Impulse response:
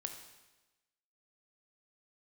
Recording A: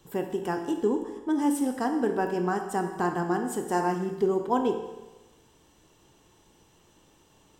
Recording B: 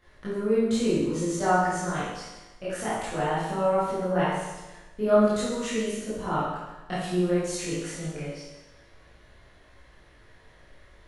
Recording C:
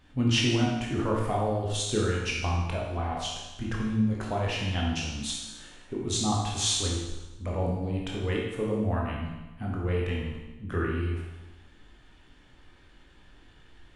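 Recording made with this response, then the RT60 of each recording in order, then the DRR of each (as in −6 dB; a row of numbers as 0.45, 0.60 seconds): A; 1.1, 1.1, 1.1 seconds; 5.0, −12.0, −3.0 decibels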